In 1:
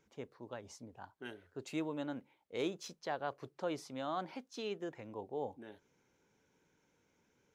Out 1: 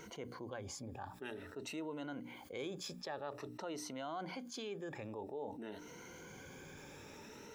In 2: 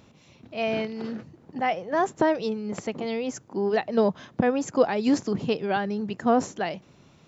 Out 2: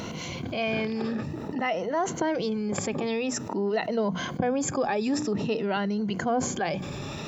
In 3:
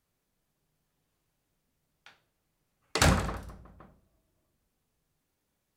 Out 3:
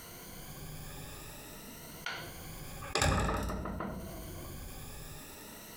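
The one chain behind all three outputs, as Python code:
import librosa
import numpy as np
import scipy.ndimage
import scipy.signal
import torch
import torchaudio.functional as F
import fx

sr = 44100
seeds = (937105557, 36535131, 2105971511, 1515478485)

y = fx.spec_ripple(x, sr, per_octave=1.9, drift_hz=0.51, depth_db=11)
y = fx.hum_notches(y, sr, base_hz=60, count=5)
y = fx.env_flatten(y, sr, amount_pct=70)
y = y * 10.0 ** (-9.0 / 20.0)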